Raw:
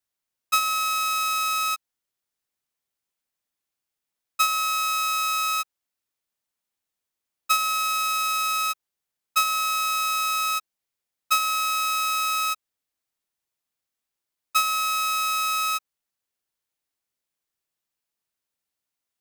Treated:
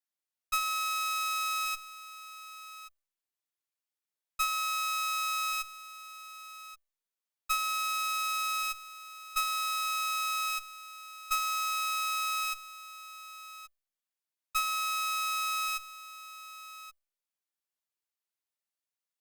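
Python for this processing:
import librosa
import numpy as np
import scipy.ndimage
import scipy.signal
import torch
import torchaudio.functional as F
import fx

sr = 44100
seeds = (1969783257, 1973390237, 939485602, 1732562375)

p1 = fx.highpass(x, sr, hz=450.0, slope=6)
p2 = fx.cheby_harmonics(p1, sr, harmonics=(8,), levels_db=(-20,), full_scale_db=-9.5)
p3 = fx.comb_fb(p2, sr, f0_hz=590.0, decay_s=0.46, harmonics='all', damping=0.0, mix_pct=40)
p4 = p3 + fx.echo_single(p3, sr, ms=1127, db=-15.0, dry=0)
y = F.gain(torch.from_numpy(p4), -4.0).numpy()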